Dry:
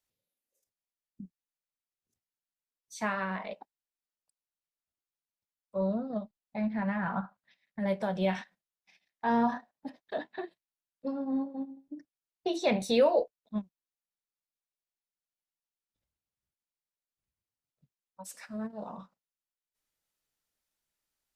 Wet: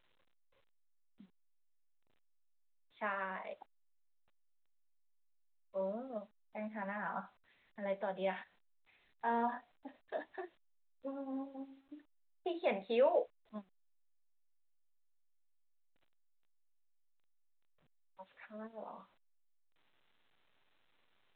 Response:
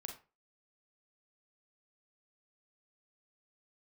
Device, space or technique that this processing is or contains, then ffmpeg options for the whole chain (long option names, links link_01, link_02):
telephone: -af "highpass=340,lowpass=3100,volume=-5.5dB" -ar 8000 -c:a pcm_alaw